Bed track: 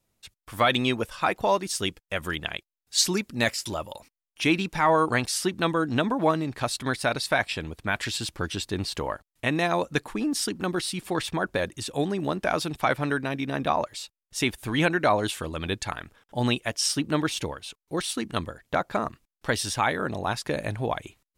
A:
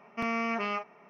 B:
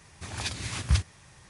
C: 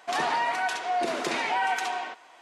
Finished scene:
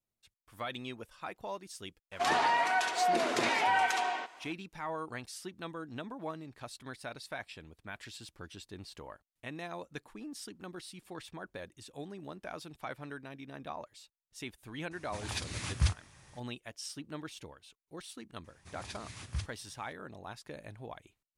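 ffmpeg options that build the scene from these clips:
-filter_complex "[2:a]asplit=2[s0][s1];[0:a]volume=0.133[s2];[3:a]atrim=end=2.41,asetpts=PTS-STARTPTS,volume=0.841,afade=t=in:d=0.004:c=hsin,afade=t=out:st=2.406:d=0.004:c=hsin,adelay=2120[s3];[s0]atrim=end=1.49,asetpts=PTS-STARTPTS,volume=0.596,afade=t=in:d=0.004:c=hsin,afade=t=out:st=1.486:d=0.004:c=hsin,adelay=14910[s4];[s1]atrim=end=1.49,asetpts=PTS-STARTPTS,volume=0.224,afade=t=in:d=0.004:c=hsin,afade=t=out:st=1.486:d=0.004:c=hsin,adelay=813204S[s5];[s2][s3][s4][s5]amix=inputs=4:normalize=0"

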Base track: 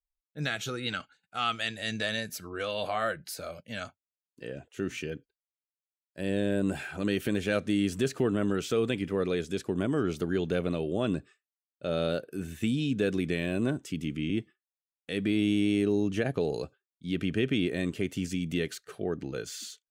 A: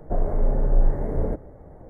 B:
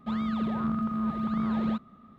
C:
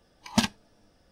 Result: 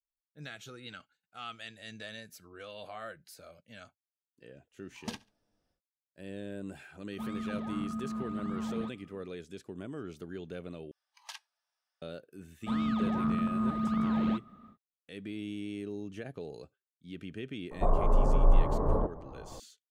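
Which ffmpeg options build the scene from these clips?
-filter_complex "[3:a]asplit=2[s0][s1];[2:a]asplit=2[s2][s3];[0:a]volume=0.224[s4];[s0]aecho=1:1:70|140:0.0794|0.0246[s5];[s1]highpass=f=920:w=0.5412,highpass=f=920:w=1.3066[s6];[1:a]lowpass=f=1100:t=q:w=8.3[s7];[s4]asplit=2[s8][s9];[s8]atrim=end=10.914[s10];[s6]atrim=end=1.11,asetpts=PTS-STARTPTS,volume=0.133[s11];[s9]atrim=start=12.016[s12];[s5]atrim=end=1.11,asetpts=PTS-STARTPTS,volume=0.15,afade=t=in:d=0.1,afade=t=out:st=1.01:d=0.1,adelay=4700[s13];[s2]atrim=end=2.18,asetpts=PTS-STARTPTS,volume=0.398,afade=t=in:d=0.004:c=hsin,afade=t=out:st=2.176:d=0.004:c=hsin,adelay=7120[s14];[s3]atrim=end=2.18,asetpts=PTS-STARTPTS,volume=0.891,afade=t=in:d=0.1,afade=t=out:st=2.08:d=0.1,adelay=12600[s15];[s7]atrim=end=1.89,asetpts=PTS-STARTPTS,volume=0.631,afade=t=in:d=0.004:c=hsin,afade=t=out:st=1.886:d=0.004:c=hsin,adelay=17710[s16];[s10][s11]acrossfade=d=0.004:c1=hsin:c2=hsin[s17];[s17][s12]acrossfade=d=0.004:c1=hsin:c2=hsin[s18];[s18][s13][s14][s15][s16]amix=inputs=5:normalize=0"

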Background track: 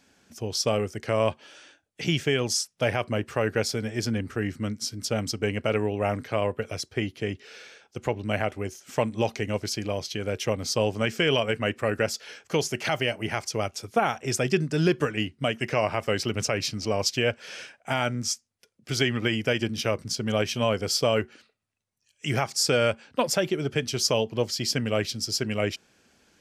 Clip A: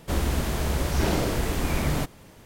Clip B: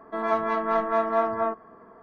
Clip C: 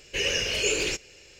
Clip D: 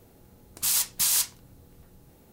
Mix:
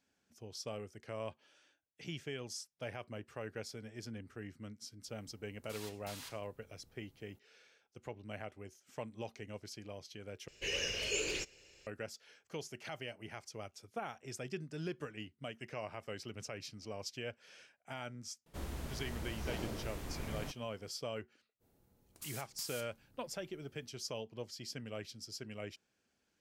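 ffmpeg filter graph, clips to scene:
-filter_complex "[4:a]asplit=2[s0][s1];[0:a]volume=0.119[s2];[s0]acrossover=split=4000[s3][s4];[s4]acompressor=threshold=0.0112:ratio=4:attack=1:release=60[s5];[s3][s5]amix=inputs=2:normalize=0[s6];[s1]acompressor=threshold=0.0282:ratio=4:attack=45:release=241:knee=1:detection=rms[s7];[s2]asplit=2[s8][s9];[s8]atrim=end=10.484[s10];[3:a]atrim=end=1.39,asetpts=PTS-STARTPTS,volume=0.299[s11];[s9]atrim=start=11.866[s12];[s6]atrim=end=2.32,asetpts=PTS-STARTPTS,volume=0.168,afade=t=in:d=0.004:c=hsin,afade=t=out:st=2.316:d=0.004:c=hsin,adelay=5070[s13];[1:a]atrim=end=2.45,asetpts=PTS-STARTPTS,volume=0.133,afade=t=in:d=0.004:c=hsin,afade=t=out:st=2.446:d=0.004:c=hsin,adelay=18460[s14];[s7]atrim=end=2.32,asetpts=PTS-STARTPTS,volume=0.141,afade=t=in:d=0.05,afade=t=out:st=2.27:d=0.05,adelay=21590[s15];[s10][s11]acrossfade=d=0.004:c1=hsin:c2=hsin[s16];[s16][s12]acrossfade=d=0.004:c1=hsin:c2=hsin[s17];[s17][s13][s14][s15]amix=inputs=4:normalize=0"

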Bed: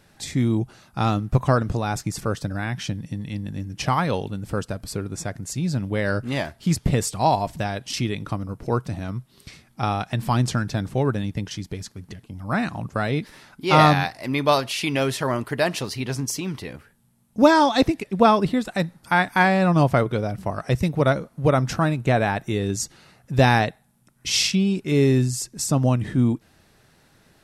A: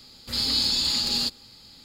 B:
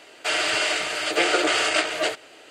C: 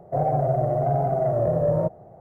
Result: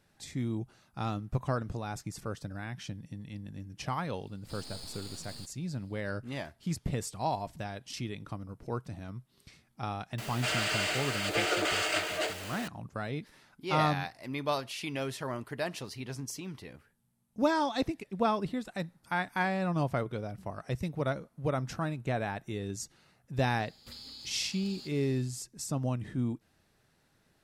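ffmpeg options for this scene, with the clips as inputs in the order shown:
-filter_complex "[1:a]asplit=2[s0][s1];[0:a]volume=0.237[s2];[s0]aeval=exprs='max(val(0),0)':c=same[s3];[2:a]aeval=exprs='val(0)+0.5*0.0398*sgn(val(0))':c=same[s4];[s1]acompressor=threshold=0.0141:ratio=10:attack=33:release=70:knee=1:detection=rms[s5];[s3]atrim=end=1.84,asetpts=PTS-STARTPTS,volume=0.126,afade=t=in:d=0.004:c=hsin,afade=t=out:st=1.836:d=0.004:c=hsin,adelay=183897S[s6];[s4]atrim=end=2.5,asetpts=PTS-STARTPTS,volume=0.316,afade=t=in:d=0.004:c=hsin,afade=t=out:st=2.496:d=0.004:c=hsin,adelay=448938S[s7];[s5]atrim=end=1.84,asetpts=PTS-STARTPTS,volume=0.299,afade=t=in:d=0.004:c=hsin,afade=t=out:st=1.836:d=0.004:c=hsin,adelay=23590[s8];[s2][s6][s7][s8]amix=inputs=4:normalize=0"

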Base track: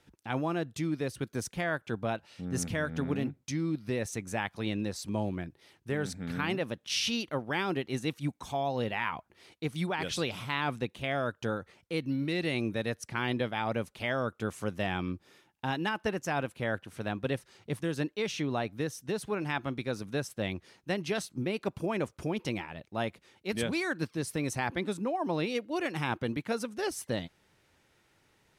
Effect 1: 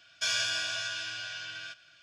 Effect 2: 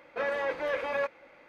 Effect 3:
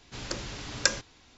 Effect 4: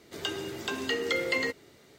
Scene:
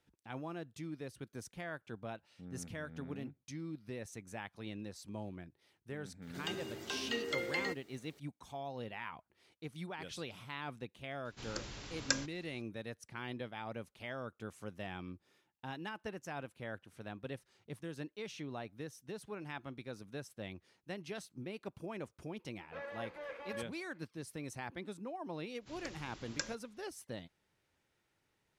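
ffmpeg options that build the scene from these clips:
-filter_complex "[3:a]asplit=2[s0][s1];[0:a]volume=0.251[s2];[4:a]acrusher=bits=10:mix=0:aa=0.000001,atrim=end=1.98,asetpts=PTS-STARTPTS,volume=0.376,afade=t=in:d=0.004:c=hsin,afade=t=out:st=1.976:d=0.004:c=hsin,adelay=6220[s3];[s0]atrim=end=1.37,asetpts=PTS-STARTPTS,volume=0.376,afade=t=in:d=0.004:c=hsin,afade=t=out:st=1.366:d=0.004:c=hsin,adelay=11250[s4];[2:a]atrim=end=1.48,asetpts=PTS-STARTPTS,volume=0.178,afade=t=in:d=0.004:c=hsin,afade=t=out:st=1.476:d=0.004:c=hsin,adelay=22560[s5];[s1]atrim=end=1.37,asetpts=PTS-STARTPTS,volume=0.178,afade=t=in:d=0.1,afade=t=out:st=1.27:d=0.1,adelay=25540[s6];[s2][s3][s4][s5][s6]amix=inputs=5:normalize=0"

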